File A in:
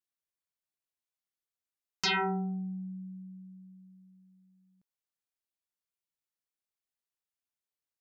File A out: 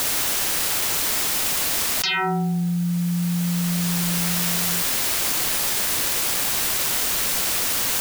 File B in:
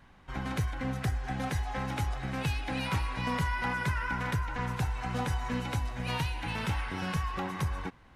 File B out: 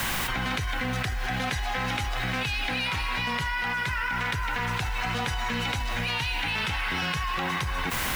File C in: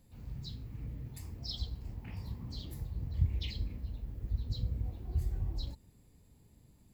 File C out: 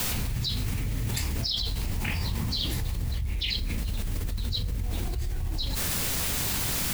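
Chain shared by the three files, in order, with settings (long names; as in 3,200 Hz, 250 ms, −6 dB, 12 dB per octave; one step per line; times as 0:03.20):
parametric band 3,100 Hz +12 dB 2.6 octaves
in parallel at −6 dB: bit-depth reduction 8 bits, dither triangular
on the sum: frequency shifter −13 Hz
floating-point word with a short mantissa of 4 bits
envelope flattener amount 100%
level −8.5 dB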